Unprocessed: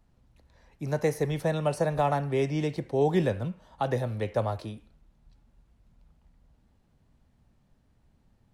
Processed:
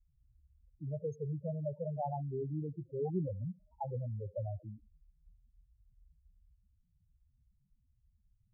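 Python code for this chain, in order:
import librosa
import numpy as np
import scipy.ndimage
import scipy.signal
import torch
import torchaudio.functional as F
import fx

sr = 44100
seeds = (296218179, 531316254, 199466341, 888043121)

y = fx.env_lowpass(x, sr, base_hz=470.0, full_db=-21.5)
y = fx.spec_topn(y, sr, count=4)
y = fx.tone_stack(y, sr, knobs='5-5-5')
y = F.gain(torch.from_numpy(y), 9.5).numpy()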